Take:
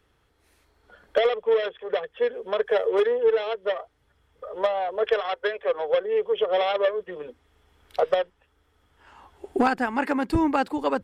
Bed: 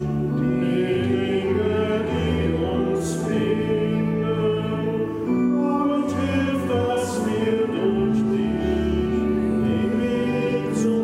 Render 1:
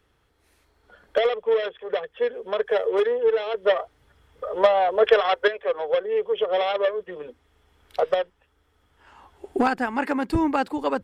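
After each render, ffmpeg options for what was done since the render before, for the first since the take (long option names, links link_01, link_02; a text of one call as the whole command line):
ffmpeg -i in.wav -filter_complex "[0:a]asettb=1/sr,asplit=3[link_01][link_02][link_03];[link_01]atrim=end=3.544[link_04];[link_02]atrim=start=3.54:end=5.48,asetpts=PTS-STARTPTS,afade=type=in:duration=0.004:curve=qsin,afade=type=out:start_time=1.936:duration=0.004:curve=qsin,acontrast=69[link_05];[link_03]atrim=start=5.476[link_06];[link_04][link_05]acrossfade=duration=0.004:curve1=hsin:curve2=qsin[link_07];[link_07][link_06]acrossfade=duration=0.004:curve1=qsin:curve2=hsin" out.wav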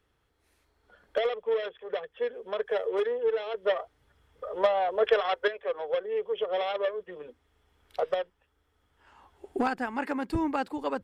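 ffmpeg -i in.wav -af "volume=-6.5dB" out.wav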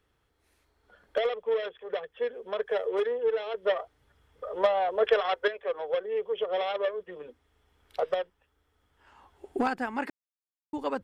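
ffmpeg -i in.wav -filter_complex "[0:a]asplit=3[link_01][link_02][link_03];[link_01]atrim=end=10.1,asetpts=PTS-STARTPTS,afade=type=out:start_time=10.096:duration=0.004:curve=hsin[link_04];[link_02]atrim=start=10.1:end=10.73,asetpts=PTS-STARTPTS,volume=0[link_05];[link_03]atrim=start=10.73,asetpts=PTS-STARTPTS,afade=type=in:duration=0.004:curve=hsin[link_06];[link_04][link_05][link_06]concat=n=3:v=0:a=1" out.wav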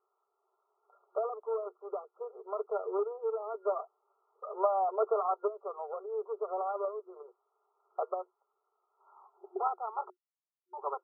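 ffmpeg -i in.wav -af "afftfilt=real='re*between(b*sr/4096,360,1400)':imag='im*between(b*sr/4096,360,1400)':win_size=4096:overlap=0.75,equalizer=frequency=510:width_type=o:width=0.32:gain=-15" out.wav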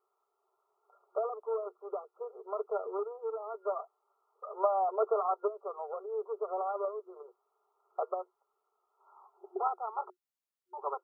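ffmpeg -i in.wav -filter_complex "[0:a]asettb=1/sr,asplit=3[link_01][link_02][link_03];[link_01]atrim=end=2.874[link_04];[link_02]atrim=start=2.87:end=4.64,asetpts=PTS-STARTPTS,afade=type=in:duration=0.004:curve=qsin,afade=type=out:start_time=1.766:duration=0.004:curve=qsin,lowshelf=frequency=330:gain=-9.5[link_05];[link_03]atrim=start=4.636[link_06];[link_04][link_05]acrossfade=duration=0.004:curve1=hsin:curve2=qsin[link_07];[link_07][link_06]acrossfade=duration=0.004:curve1=qsin:curve2=hsin" out.wav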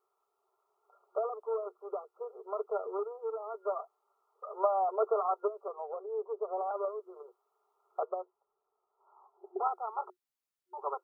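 ffmpeg -i in.wav -filter_complex "[0:a]asettb=1/sr,asplit=3[link_01][link_02][link_03];[link_01]atrim=end=5.684[link_04];[link_02]atrim=start=5.68:end=6.71,asetpts=PTS-STARTPTS,afade=type=in:duration=0.004:curve=qsin,afade=type=out:start_time=1.026:duration=0.004:curve=qsin,lowpass=frequency=1100:width=0.5412,lowpass=frequency=1100:width=1.3066[link_05];[link_03]atrim=start=6.706[link_06];[link_04][link_05]acrossfade=duration=0.004:curve1=hsin:curve2=qsin[link_07];[link_07][link_06]acrossfade=duration=0.004:curve1=qsin:curve2=hsin,asettb=1/sr,asplit=3[link_08][link_09][link_10];[link_08]atrim=end=8.034[link_11];[link_09]atrim=start=8.03:end=9.6,asetpts=PTS-STARTPTS,afade=type=in:duration=0.004:curve=qsin,afade=type=out:start_time=1.566:duration=0.004:curve=qsin,lowpass=1000[link_12];[link_10]atrim=start=9.596[link_13];[link_11][link_12]acrossfade=duration=0.004:curve1=hsin:curve2=qsin[link_14];[link_14][link_13]acrossfade=duration=0.004:curve1=qsin:curve2=hsin" out.wav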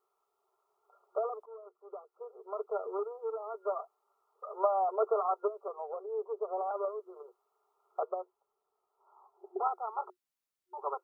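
ffmpeg -i in.wav -filter_complex "[0:a]asplit=2[link_01][link_02];[link_01]atrim=end=1.46,asetpts=PTS-STARTPTS,afade=type=out:start_time=1.456:duration=0.004:curve=hsin:silence=0.133352[link_03];[link_02]atrim=start=1.46,asetpts=PTS-STARTPTS,afade=type=in:duration=1.44:silence=0.133352[link_04];[link_03][link_04]concat=n=2:v=0:a=1" out.wav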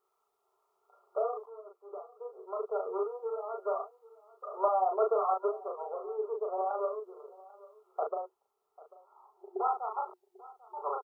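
ffmpeg -i in.wav -filter_complex "[0:a]asplit=2[link_01][link_02];[link_02]adelay=37,volume=-3dB[link_03];[link_01][link_03]amix=inputs=2:normalize=0,aecho=1:1:793:0.0891" out.wav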